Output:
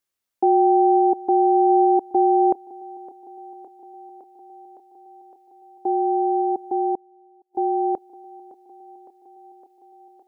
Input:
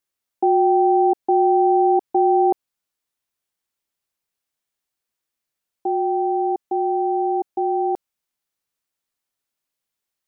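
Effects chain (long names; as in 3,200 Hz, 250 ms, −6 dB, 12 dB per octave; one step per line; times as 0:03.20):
feedback echo with a high-pass in the loop 561 ms, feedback 81%, high-pass 180 Hz, level −19 dB
0:06.95–0:07.55: gate with flip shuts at −34 dBFS, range −32 dB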